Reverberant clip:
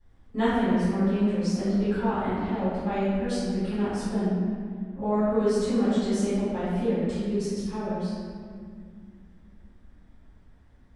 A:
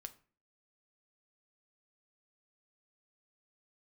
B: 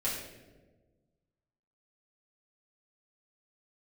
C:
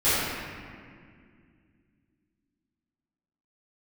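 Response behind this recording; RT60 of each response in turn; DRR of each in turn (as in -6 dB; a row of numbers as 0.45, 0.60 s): C; 0.40, 1.3, 2.1 s; 8.0, -8.5, -17.0 dB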